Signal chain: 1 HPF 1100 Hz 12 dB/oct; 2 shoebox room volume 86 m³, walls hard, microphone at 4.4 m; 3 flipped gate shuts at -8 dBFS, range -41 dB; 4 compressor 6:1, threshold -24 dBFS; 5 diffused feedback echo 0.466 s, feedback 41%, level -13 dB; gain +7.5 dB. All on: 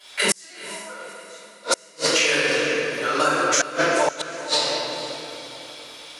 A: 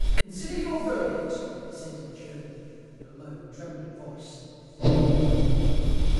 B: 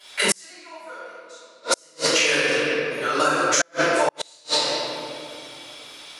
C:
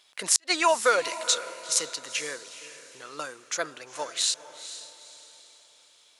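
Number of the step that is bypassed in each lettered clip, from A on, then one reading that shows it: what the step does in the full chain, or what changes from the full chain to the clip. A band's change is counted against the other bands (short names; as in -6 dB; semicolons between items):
1, 125 Hz band +31.5 dB; 5, momentary loudness spread change +2 LU; 2, momentary loudness spread change +1 LU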